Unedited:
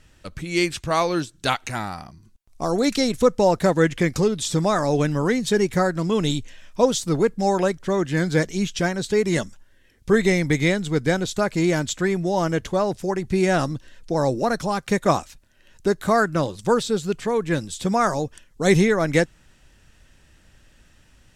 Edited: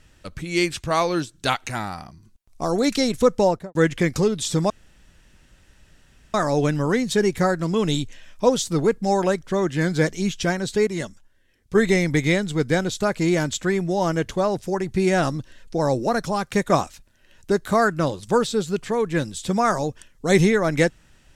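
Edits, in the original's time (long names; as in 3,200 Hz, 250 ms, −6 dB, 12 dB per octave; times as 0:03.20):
0:03.40–0:03.75: fade out and dull
0:04.70: splice in room tone 1.64 s
0:09.23–0:10.11: clip gain −6 dB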